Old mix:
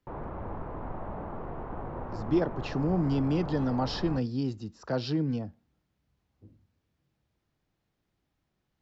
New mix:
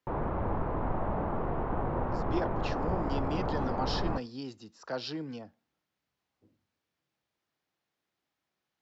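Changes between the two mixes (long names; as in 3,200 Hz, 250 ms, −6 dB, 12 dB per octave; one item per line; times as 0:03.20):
speech: add high-pass filter 750 Hz 6 dB per octave
background +6.0 dB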